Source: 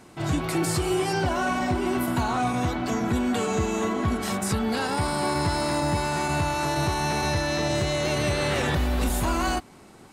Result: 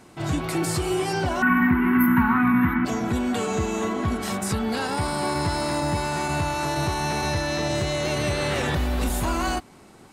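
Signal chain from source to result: 1.42–2.85 EQ curve 140 Hz 0 dB, 220 Hz +14 dB, 610 Hz -24 dB, 900 Hz +4 dB, 1900 Hz +12 dB, 5000 Hz -28 dB, 7700 Hz -29 dB, 13000 Hz +12 dB

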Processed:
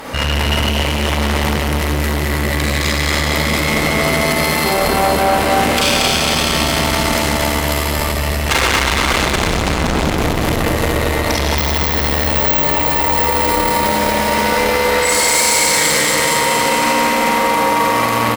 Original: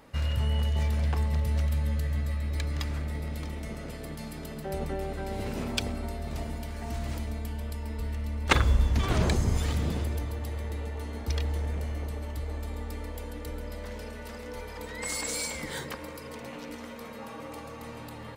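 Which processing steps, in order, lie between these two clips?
9.31–10 tilt -2.5 dB/oct; Schroeder reverb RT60 2.2 s, combs from 33 ms, DRR -6.5 dB; 11.58–13.26 careless resampling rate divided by 2×, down filtered, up zero stuff; on a send: feedback echo 0.23 s, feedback 60%, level -3 dB; on the sum: tube stage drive 26 dB, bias 0.7; in parallel at -2 dB: negative-ratio compressor -40 dBFS, ratio -1; on the sum: low shelf 260 Hz -11.5 dB; maximiser +24.5 dB; lo-fi delay 0.18 s, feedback 80%, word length 6-bit, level -11.5 dB; gain -5 dB

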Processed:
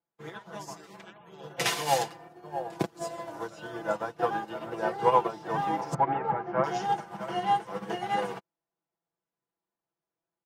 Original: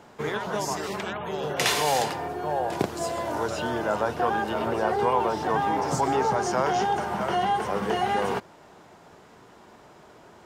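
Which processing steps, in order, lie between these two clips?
5.94–6.64 LPF 2400 Hz 24 dB/oct; comb 6 ms, depth 78%; upward expander 2.5:1, over -46 dBFS

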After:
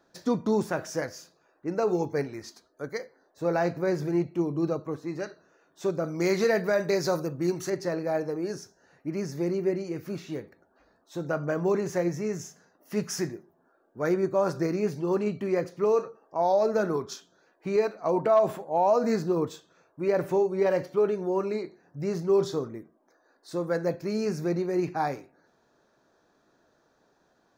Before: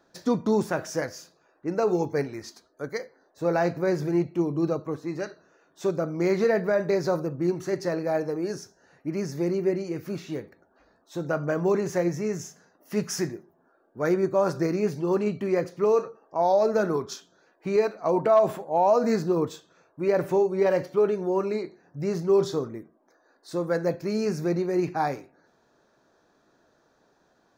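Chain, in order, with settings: 6.04–7.7 high shelf 2600 Hz +10.5 dB; gain -2 dB

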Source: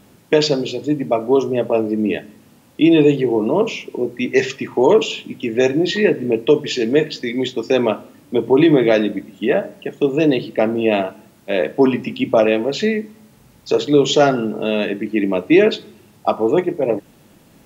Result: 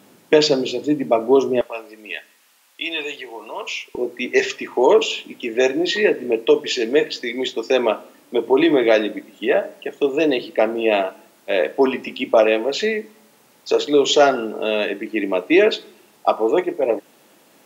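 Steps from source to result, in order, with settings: HPF 220 Hz 12 dB/oct, from 1.61 s 1300 Hz, from 3.95 s 390 Hz; gain +1 dB

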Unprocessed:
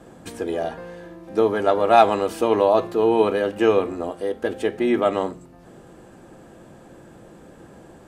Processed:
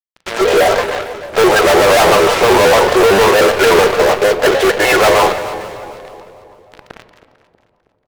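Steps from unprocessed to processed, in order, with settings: gliding pitch shift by -2 st ending unshifted; LPF 2600 Hz 12 dB/oct; gate with hold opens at -37 dBFS; elliptic high-pass 450 Hz, stop band 40 dB; comb 7.5 ms, depth 49%; in parallel at -8.5 dB: requantised 6-bit, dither none; on the sum: fuzz box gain 41 dB, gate -43 dBFS; split-band echo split 1000 Hz, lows 0.318 s, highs 0.224 s, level -13.5 dB; on a send at -11.5 dB: reverb RT60 2.0 s, pre-delay 17 ms; on the sum: shaped vibrato square 6.6 Hz, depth 160 cents; gain +5 dB

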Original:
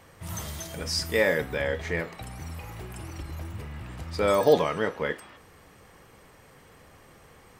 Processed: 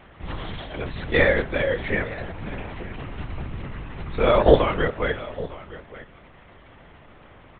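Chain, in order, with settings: echo 0.911 s -17 dB; LPC vocoder at 8 kHz whisper; gain +5 dB

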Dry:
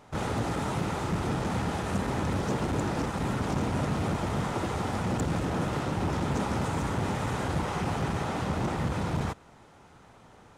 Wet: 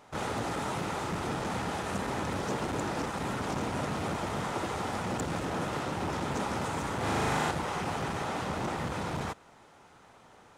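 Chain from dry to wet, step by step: low shelf 240 Hz -9.5 dB; 6.97–7.51 flutter echo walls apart 6.6 m, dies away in 1.4 s

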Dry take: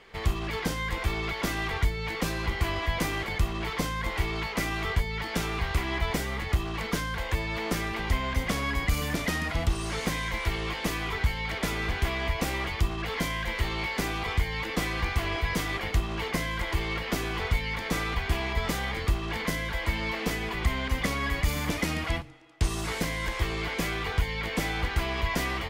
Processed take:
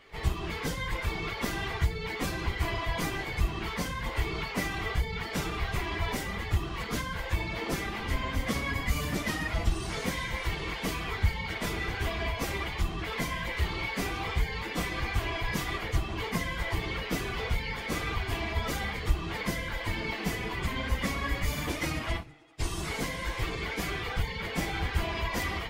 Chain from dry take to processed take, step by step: phase scrambler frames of 50 ms; gain -2.5 dB

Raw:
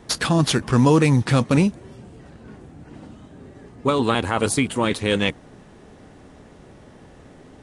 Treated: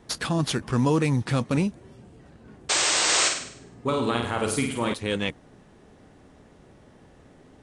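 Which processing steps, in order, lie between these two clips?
2.69–3.29 painted sound noise 300–8700 Hz -16 dBFS; 3.04–4.94 flutter echo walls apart 8.7 m, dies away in 0.61 s; gain -6.5 dB

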